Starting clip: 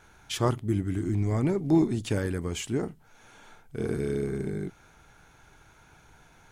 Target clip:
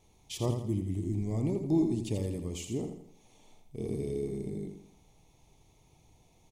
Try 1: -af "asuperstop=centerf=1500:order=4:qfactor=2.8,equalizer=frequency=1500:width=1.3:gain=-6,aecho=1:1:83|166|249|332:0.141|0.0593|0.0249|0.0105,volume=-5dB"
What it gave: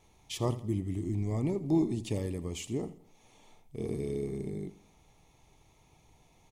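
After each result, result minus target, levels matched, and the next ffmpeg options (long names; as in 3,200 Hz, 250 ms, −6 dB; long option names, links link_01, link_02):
echo-to-direct −9.5 dB; 2,000 Hz band +4.0 dB
-af "asuperstop=centerf=1500:order=4:qfactor=2.8,equalizer=frequency=1500:width=1.3:gain=-6,aecho=1:1:83|166|249|332|415:0.422|0.177|0.0744|0.0312|0.0131,volume=-5dB"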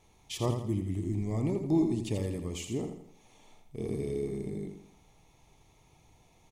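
2,000 Hz band +4.0 dB
-af "asuperstop=centerf=1500:order=4:qfactor=2.8,equalizer=frequency=1500:width=1.3:gain=-15.5,aecho=1:1:83|166|249|332|415:0.422|0.177|0.0744|0.0312|0.0131,volume=-5dB"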